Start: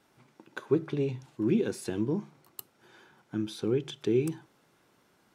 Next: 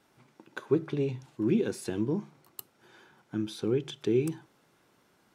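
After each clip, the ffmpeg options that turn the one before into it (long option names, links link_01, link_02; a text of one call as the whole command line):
ffmpeg -i in.wav -af anull out.wav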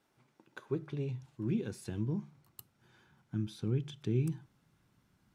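ffmpeg -i in.wav -af "asubboost=boost=9:cutoff=150,volume=-8.5dB" out.wav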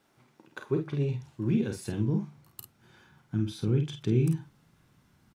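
ffmpeg -i in.wav -af "aecho=1:1:36|49:0.282|0.447,volume=6dB" out.wav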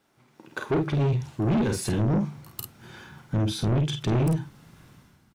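ffmpeg -i in.wav -af "dynaudnorm=framelen=100:gausssize=9:maxgain=13dB,asoftclip=type=tanh:threshold=-20dB" out.wav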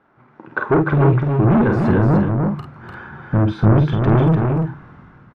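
ffmpeg -i in.wav -af "lowpass=frequency=1400:width_type=q:width=1.7,aecho=1:1:297:0.596,volume=8.5dB" out.wav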